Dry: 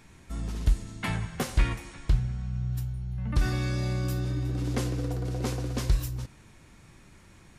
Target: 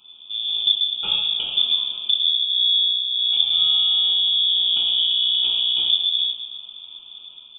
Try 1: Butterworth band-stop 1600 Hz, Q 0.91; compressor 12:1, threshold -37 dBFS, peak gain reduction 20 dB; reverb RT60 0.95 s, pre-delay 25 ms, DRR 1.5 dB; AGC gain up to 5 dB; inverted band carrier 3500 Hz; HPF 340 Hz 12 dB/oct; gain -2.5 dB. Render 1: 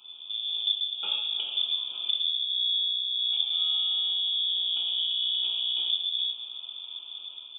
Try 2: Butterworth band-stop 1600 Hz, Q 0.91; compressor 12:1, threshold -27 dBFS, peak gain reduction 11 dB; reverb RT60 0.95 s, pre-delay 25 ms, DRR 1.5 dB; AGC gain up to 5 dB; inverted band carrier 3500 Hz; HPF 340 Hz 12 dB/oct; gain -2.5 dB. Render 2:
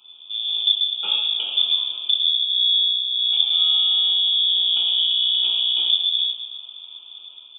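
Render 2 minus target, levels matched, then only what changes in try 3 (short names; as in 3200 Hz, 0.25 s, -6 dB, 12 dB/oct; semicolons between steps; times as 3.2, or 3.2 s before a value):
250 Hz band -5.5 dB
remove: HPF 340 Hz 12 dB/oct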